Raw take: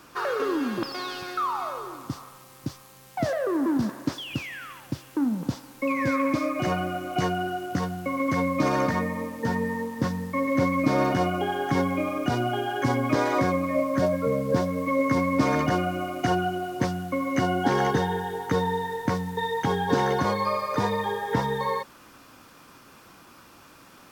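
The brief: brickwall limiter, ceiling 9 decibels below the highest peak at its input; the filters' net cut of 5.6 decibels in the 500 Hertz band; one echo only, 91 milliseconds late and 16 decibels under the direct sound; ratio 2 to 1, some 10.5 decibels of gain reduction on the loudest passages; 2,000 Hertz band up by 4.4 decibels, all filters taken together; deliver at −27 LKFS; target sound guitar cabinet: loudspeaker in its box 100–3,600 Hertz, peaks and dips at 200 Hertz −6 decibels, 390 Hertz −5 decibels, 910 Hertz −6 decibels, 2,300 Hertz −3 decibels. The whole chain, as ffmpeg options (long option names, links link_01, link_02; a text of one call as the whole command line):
ffmpeg -i in.wav -af "equalizer=frequency=500:width_type=o:gain=-5,equalizer=frequency=2000:width_type=o:gain=7.5,acompressor=threshold=-39dB:ratio=2,alimiter=level_in=5dB:limit=-24dB:level=0:latency=1,volume=-5dB,highpass=100,equalizer=frequency=200:width_type=q:width=4:gain=-6,equalizer=frequency=390:width_type=q:width=4:gain=-5,equalizer=frequency=910:width_type=q:width=4:gain=-6,equalizer=frequency=2300:width_type=q:width=4:gain=-3,lowpass=frequency=3600:width=0.5412,lowpass=frequency=3600:width=1.3066,aecho=1:1:91:0.158,volume=13dB" out.wav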